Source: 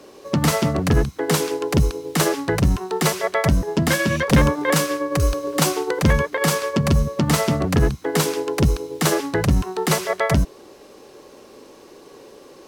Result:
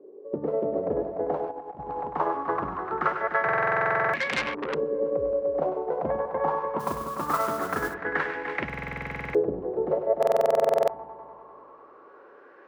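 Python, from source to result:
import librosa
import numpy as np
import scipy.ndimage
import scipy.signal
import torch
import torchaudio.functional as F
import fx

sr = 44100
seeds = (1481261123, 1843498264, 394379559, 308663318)

y = fx.tracing_dist(x, sr, depth_ms=0.057)
y = fx.highpass(y, sr, hz=110.0, slope=6)
y = fx.high_shelf(y, sr, hz=11000.0, db=6.5)
y = fx.echo_heads(y, sr, ms=99, heads='first and third', feedback_pct=60, wet_db=-10.0)
y = fx.filter_lfo_lowpass(y, sr, shape='saw_up', hz=0.22, low_hz=390.0, high_hz=2500.0, q=4.5)
y = fx.bass_treble(y, sr, bass_db=-14, treble_db=-7)
y = fx.over_compress(y, sr, threshold_db=-26.0, ratio=-0.5, at=(1.51, 2.07))
y = fx.mod_noise(y, sr, seeds[0], snr_db=17, at=(6.79, 7.93), fade=0.02)
y = fx.buffer_glitch(y, sr, at_s=(3.44, 8.65, 10.18), block=2048, repeats=14)
y = fx.transformer_sat(y, sr, knee_hz=3500.0, at=(4.15, 4.75))
y = y * librosa.db_to_amplitude(-8.5)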